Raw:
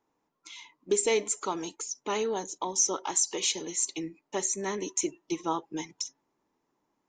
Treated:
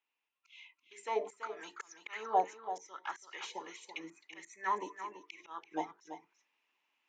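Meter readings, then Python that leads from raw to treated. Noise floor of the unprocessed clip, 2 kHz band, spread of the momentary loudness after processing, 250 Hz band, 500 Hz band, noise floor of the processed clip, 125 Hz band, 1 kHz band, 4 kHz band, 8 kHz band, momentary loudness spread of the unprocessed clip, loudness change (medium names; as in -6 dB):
-80 dBFS, -4.5 dB, 19 LU, -14.0 dB, -10.5 dB, under -85 dBFS, under -15 dB, -0.5 dB, -15.5 dB, -27.5 dB, 12 LU, -9.5 dB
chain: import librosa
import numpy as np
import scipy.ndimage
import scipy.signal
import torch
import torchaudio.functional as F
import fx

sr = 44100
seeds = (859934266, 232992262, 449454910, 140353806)

p1 = fx.hum_notches(x, sr, base_hz=50, count=9)
p2 = fx.rider(p1, sr, range_db=5, speed_s=0.5)
p3 = fx.auto_swell(p2, sr, attack_ms=320.0)
p4 = fx.auto_wah(p3, sr, base_hz=700.0, top_hz=2700.0, q=5.3, full_db=-27.5, direction='down')
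p5 = p4 + fx.echo_single(p4, sr, ms=334, db=-10.5, dry=0)
y = p5 * 10.0 ** (11.5 / 20.0)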